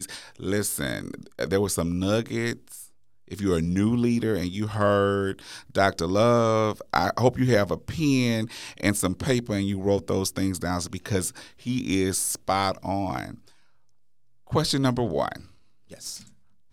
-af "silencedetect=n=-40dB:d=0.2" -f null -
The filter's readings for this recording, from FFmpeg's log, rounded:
silence_start: 2.86
silence_end: 3.31 | silence_duration: 0.45
silence_start: 13.48
silence_end: 14.47 | silence_duration: 0.99
silence_start: 15.45
silence_end: 15.91 | silence_duration: 0.47
silence_start: 16.27
silence_end: 16.73 | silence_duration: 0.45